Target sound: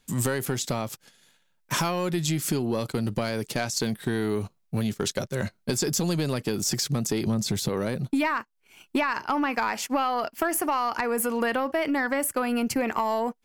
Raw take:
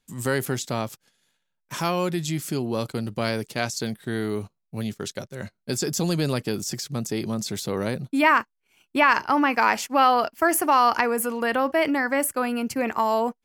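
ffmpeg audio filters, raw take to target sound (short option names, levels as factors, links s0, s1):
-filter_complex "[0:a]asettb=1/sr,asplit=3[s0][s1][s2];[s0]atrim=end=7.274[s3];[s1]atrim=start=7.27:end=7.69,asetpts=PTS-STARTPTS,afade=t=in:d=0.004:c=qsin,afade=t=out:st=0.416:d=0.004:c=qsin,lowshelf=f=160:g=11[s4];[s2]atrim=start=7.686[s5];[s3][s4]acrossfade=d=0.004:c1=hsin:c2=qsin[s6];[s6][s5]acrossfade=d=0.004:c1=qsin:c2=hsin,acompressor=threshold=0.0316:ratio=16,aeval=exprs='(tanh(14.1*val(0)+0.1)-tanh(0.1))/14.1':c=same,volume=2.82"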